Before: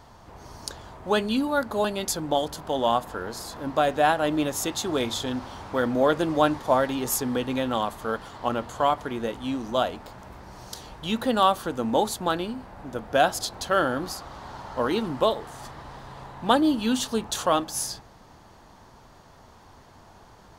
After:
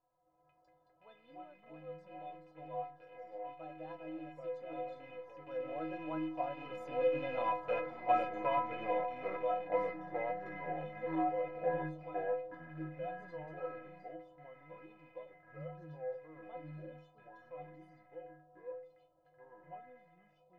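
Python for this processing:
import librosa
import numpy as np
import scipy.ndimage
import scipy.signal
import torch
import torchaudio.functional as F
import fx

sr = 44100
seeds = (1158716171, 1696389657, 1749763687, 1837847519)

y = fx.rattle_buzz(x, sr, strikes_db=-38.0, level_db=-16.0)
y = fx.doppler_pass(y, sr, speed_mps=16, closest_m=6.9, pass_at_s=7.92)
y = scipy.signal.sosfilt(scipy.signal.butter(2, 1700.0, 'lowpass', fs=sr, output='sos'), y)
y = fx.hum_notches(y, sr, base_hz=50, count=3)
y = fx.echo_pitch(y, sr, ms=99, semitones=-3, count=2, db_per_echo=-3.0)
y = fx.peak_eq(y, sr, hz=600.0, db=13.5, octaves=0.67)
y = fx.stiff_resonator(y, sr, f0_hz=150.0, decay_s=0.65, stiffness=0.03)
y = F.gain(torch.from_numpy(y), 6.5).numpy()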